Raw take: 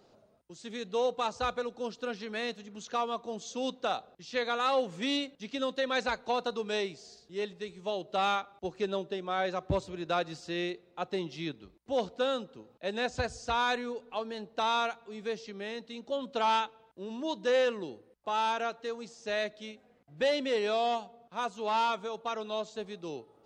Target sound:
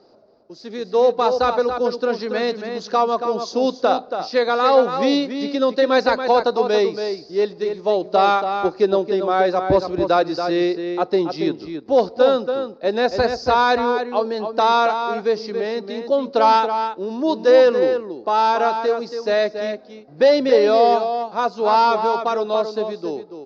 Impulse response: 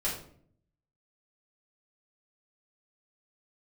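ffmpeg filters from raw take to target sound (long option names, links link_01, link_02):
-filter_complex "[0:a]firequalizer=gain_entry='entry(120,0);entry(310,11);entry(3200,-4);entry(4800,14);entry(8700,-29)':delay=0.05:min_phase=1,asplit=2[link_01][link_02];[link_02]adelay=279.9,volume=-7dB,highshelf=frequency=4000:gain=-6.3[link_03];[link_01][link_03]amix=inputs=2:normalize=0,dynaudnorm=framelen=110:gausssize=17:maxgain=6dB"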